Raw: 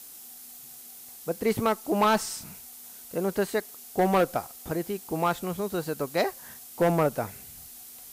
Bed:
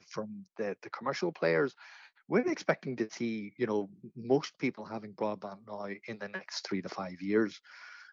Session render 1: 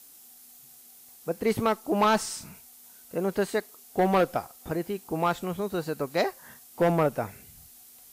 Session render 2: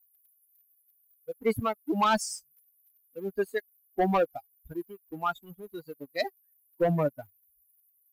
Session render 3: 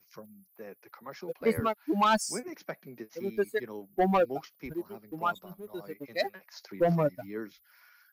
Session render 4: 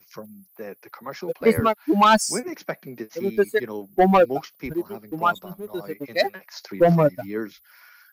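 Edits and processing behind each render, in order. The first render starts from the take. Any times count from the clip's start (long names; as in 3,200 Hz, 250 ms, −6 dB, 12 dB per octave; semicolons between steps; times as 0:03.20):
noise reduction from a noise print 6 dB
spectral dynamics exaggerated over time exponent 3; leveller curve on the samples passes 1
mix in bed −10 dB
level +9 dB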